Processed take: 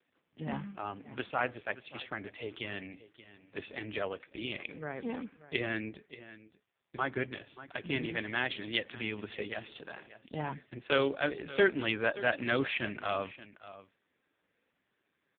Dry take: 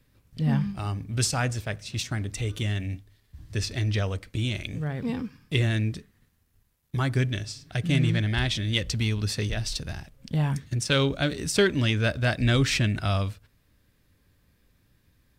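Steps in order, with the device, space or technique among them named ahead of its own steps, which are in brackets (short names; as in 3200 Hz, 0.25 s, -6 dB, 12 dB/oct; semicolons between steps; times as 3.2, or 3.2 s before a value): satellite phone (BPF 380–3100 Hz; echo 0.58 s -16.5 dB; AMR-NB 5.15 kbps 8000 Hz)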